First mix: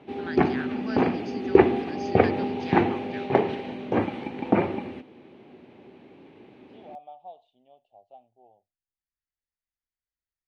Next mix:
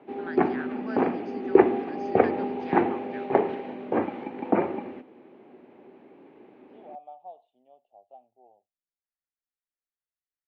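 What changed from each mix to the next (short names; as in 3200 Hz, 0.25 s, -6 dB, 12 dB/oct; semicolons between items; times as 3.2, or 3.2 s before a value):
master: add three-band isolator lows -14 dB, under 210 Hz, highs -14 dB, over 2100 Hz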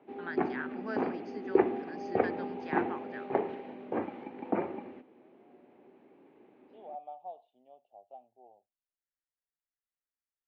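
background -8.0 dB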